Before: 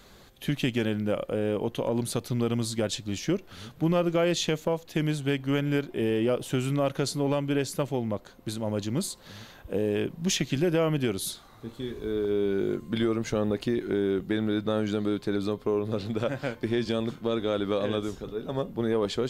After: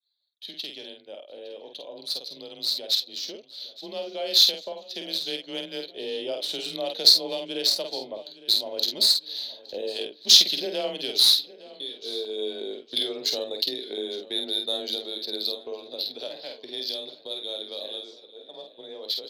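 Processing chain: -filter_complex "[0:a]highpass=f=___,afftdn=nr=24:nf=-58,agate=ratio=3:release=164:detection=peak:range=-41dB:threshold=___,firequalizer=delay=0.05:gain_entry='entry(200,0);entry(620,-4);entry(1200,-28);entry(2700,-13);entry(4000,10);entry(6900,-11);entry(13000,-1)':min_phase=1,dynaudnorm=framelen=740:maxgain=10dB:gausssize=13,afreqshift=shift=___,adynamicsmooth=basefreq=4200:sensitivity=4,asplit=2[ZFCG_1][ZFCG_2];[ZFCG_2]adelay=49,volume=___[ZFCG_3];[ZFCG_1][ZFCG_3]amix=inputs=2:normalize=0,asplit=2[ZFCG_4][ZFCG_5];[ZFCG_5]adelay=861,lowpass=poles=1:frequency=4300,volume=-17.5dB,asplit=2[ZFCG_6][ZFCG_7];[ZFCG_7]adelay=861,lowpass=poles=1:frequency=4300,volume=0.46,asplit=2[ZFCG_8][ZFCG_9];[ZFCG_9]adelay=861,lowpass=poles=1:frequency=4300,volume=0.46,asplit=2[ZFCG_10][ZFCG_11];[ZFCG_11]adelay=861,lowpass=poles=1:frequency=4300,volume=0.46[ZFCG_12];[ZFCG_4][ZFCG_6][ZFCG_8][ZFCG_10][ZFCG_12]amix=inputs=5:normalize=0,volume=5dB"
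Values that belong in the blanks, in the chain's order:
1200, -50dB, 25, -5dB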